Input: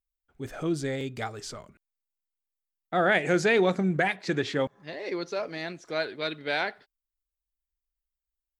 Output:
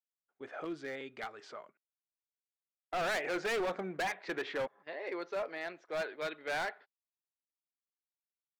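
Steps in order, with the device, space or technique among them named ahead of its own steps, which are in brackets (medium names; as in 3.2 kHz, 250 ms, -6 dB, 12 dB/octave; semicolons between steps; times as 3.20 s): walkie-talkie (band-pass 510–2200 Hz; hard clipper -29.5 dBFS, distortion -6 dB; gate -54 dBFS, range -12 dB); 0.64–1.43 s: dynamic bell 640 Hz, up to -6 dB, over -49 dBFS, Q 0.92; trim -1.5 dB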